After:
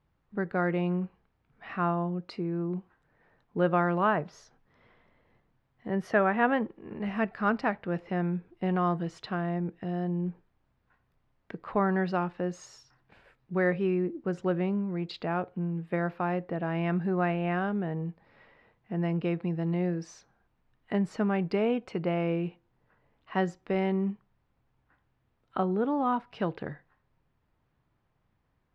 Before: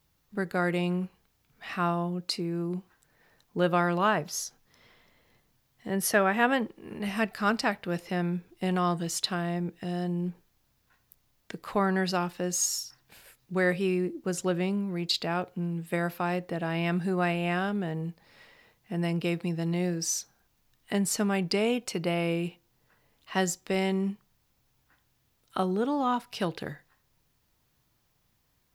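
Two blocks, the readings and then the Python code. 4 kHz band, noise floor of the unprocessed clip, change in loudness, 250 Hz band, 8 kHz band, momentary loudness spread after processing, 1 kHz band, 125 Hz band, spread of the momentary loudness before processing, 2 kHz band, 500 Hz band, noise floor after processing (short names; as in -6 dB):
-13.0 dB, -72 dBFS, -1.0 dB, 0.0 dB, under -20 dB, 10 LU, -0.5 dB, 0.0 dB, 11 LU, -3.0 dB, 0.0 dB, -74 dBFS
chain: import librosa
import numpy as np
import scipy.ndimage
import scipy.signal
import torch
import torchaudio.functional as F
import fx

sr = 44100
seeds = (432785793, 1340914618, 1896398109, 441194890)

y = scipy.signal.sosfilt(scipy.signal.butter(2, 1800.0, 'lowpass', fs=sr, output='sos'), x)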